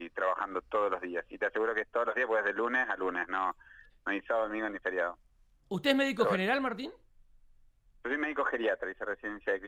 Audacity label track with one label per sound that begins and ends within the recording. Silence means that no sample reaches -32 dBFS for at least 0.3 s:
4.070000	5.110000	sound
5.710000	6.870000	sound